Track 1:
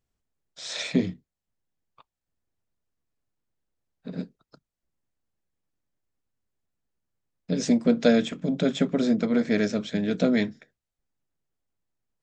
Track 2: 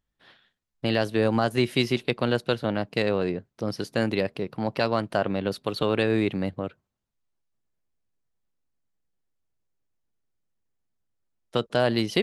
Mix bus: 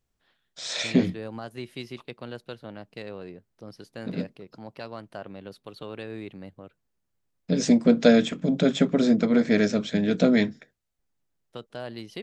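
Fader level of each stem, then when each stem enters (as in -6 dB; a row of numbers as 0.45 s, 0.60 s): +2.5 dB, -14.0 dB; 0.00 s, 0.00 s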